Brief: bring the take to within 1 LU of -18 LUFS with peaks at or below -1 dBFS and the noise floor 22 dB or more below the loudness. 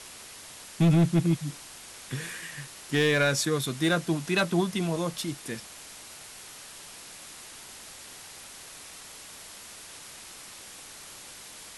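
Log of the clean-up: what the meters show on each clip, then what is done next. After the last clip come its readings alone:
clipped 0.5%; flat tops at -16.5 dBFS; noise floor -46 dBFS; noise floor target -49 dBFS; loudness -27.0 LUFS; peak -16.5 dBFS; loudness target -18.0 LUFS
-> clip repair -16.5 dBFS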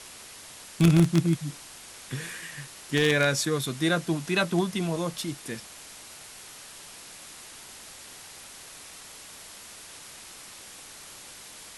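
clipped 0.0%; noise floor -46 dBFS; noise floor target -48 dBFS
-> denoiser 6 dB, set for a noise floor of -46 dBFS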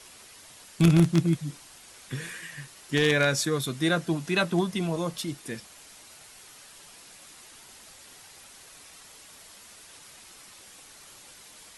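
noise floor -51 dBFS; loudness -26.0 LUFS; peak -7.5 dBFS; loudness target -18.0 LUFS
-> gain +8 dB; limiter -1 dBFS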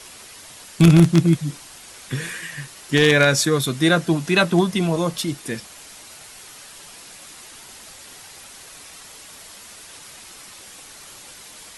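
loudness -18.5 LUFS; peak -1.0 dBFS; noise floor -43 dBFS

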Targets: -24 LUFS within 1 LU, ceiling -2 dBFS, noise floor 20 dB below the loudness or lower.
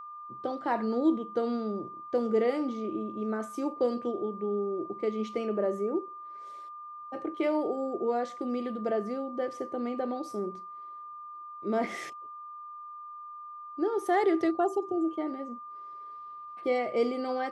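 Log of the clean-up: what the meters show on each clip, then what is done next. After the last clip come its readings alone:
steady tone 1200 Hz; tone level -41 dBFS; loudness -31.0 LUFS; peak -15.5 dBFS; loudness target -24.0 LUFS
-> notch 1200 Hz, Q 30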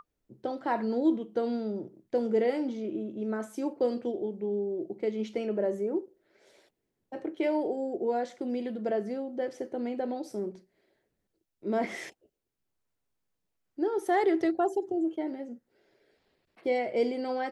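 steady tone none; loudness -31.5 LUFS; peak -16.0 dBFS; loudness target -24.0 LUFS
-> gain +7.5 dB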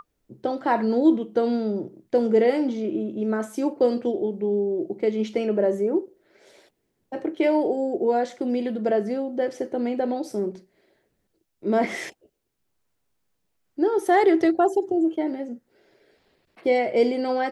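loudness -24.0 LUFS; peak -8.5 dBFS; noise floor -74 dBFS

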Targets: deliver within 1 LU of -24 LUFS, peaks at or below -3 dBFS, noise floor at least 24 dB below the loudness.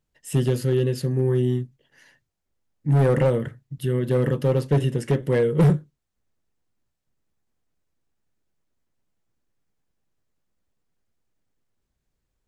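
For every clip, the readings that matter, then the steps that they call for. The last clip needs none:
clipped 1.1%; flat tops at -13.0 dBFS; loudness -22.5 LUFS; peak -13.0 dBFS; loudness target -24.0 LUFS
-> clip repair -13 dBFS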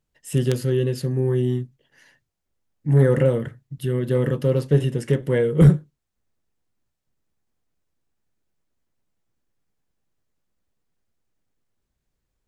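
clipped 0.0%; loudness -21.0 LUFS; peak -4.0 dBFS; loudness target -24.0 LUFS
-> gain -3 dB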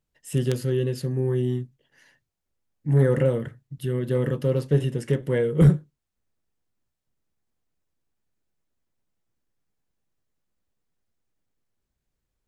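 loudness -24.0 LUFS; peak -7.0 dBFS; noise floor -82 dBFS

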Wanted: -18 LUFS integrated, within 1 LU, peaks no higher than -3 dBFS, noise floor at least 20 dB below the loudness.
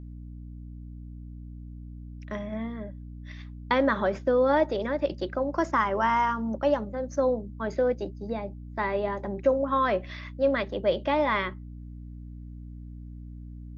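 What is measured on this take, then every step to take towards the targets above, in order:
hum 60 Hz; harmonics up to 300 Hz; hum level -39 dBFS; loudness -27.0 LUFS; peak -11.0 dBFS; loudness target -18.0 LUFS
-> de-hum 60 Hz, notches 5; gain +9 dB; limiter -3 dBFS

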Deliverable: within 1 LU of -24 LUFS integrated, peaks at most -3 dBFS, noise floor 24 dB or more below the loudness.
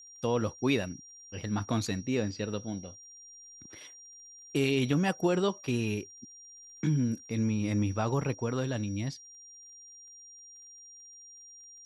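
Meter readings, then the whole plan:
ticks 25/s; steady tone 5700 Hz; tone level -49 dBFS; loudness -31.0 LUFS; peak -14.5 dBFS; loudness target -24.0 LUFS
-> de-click; notch 5700 Hz, Q 30; gain +7 dB

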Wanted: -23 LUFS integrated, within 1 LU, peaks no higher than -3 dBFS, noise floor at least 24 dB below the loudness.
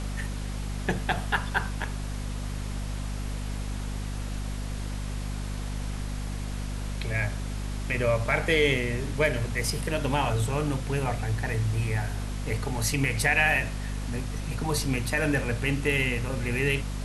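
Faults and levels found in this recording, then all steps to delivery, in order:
hum 50 Hz; harmonics up to 250 Hz; hum level -30 dBFS; noise floor -33 dBFS; noise floor target -53 dBFS; loudness -28.5 LUFS; peak -9.5 dBFS; loudness target -23.0 LUFS
-> notches 50/100/150/200/250 Hz; denoiser 20 dB, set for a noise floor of -33 dBFS; gain +5.5 dB

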